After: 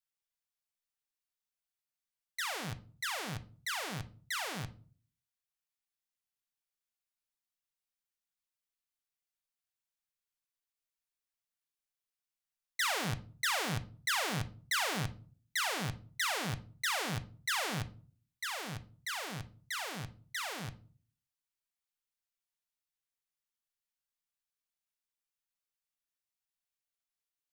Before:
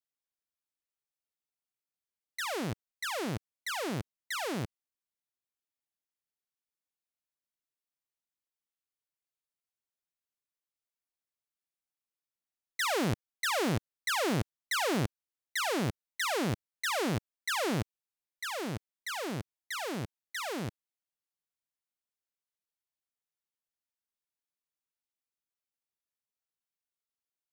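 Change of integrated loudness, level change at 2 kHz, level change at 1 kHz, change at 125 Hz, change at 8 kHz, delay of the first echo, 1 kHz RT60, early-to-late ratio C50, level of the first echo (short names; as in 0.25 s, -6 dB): -2.0 dB, -0.5 dB, -2.5 dB, -3.5 dB, 0.0 dB, none, 0.40 s, 17.0 dB, none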